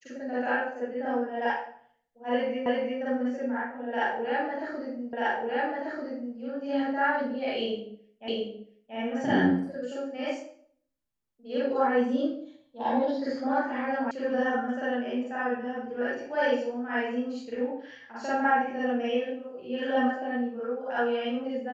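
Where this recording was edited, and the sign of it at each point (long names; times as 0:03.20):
0:02.66: the same again, the last 0.35 s
0:05.13: the same again, the last 1.24 s
0:08.28: the same again, the last 0.68 s
0:14.11: cut off before it has died away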